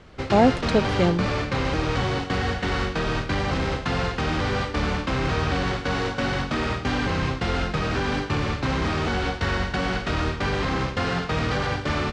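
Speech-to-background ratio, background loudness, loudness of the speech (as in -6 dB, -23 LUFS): 3.0 dB, -25.5 LUFS, -22.5 LUFS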